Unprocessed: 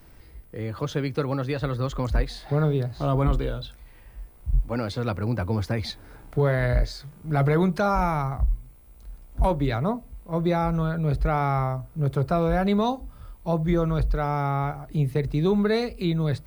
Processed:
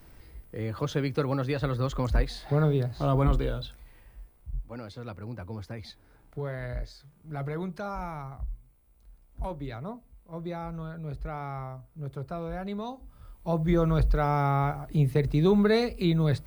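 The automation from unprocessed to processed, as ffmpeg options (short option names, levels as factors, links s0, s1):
-af "volume=3.55,afade=t=out:st=3.62:d=0.9:silence=0.281838,afade=t=in:st=12.92:d=1.01:silence=0.237137"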